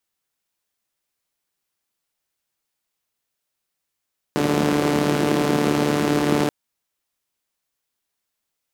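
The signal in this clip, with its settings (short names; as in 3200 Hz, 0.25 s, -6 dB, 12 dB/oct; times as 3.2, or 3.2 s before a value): four-cylinder engine model, steady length 2.13 s, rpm 4400, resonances 220/320 Hz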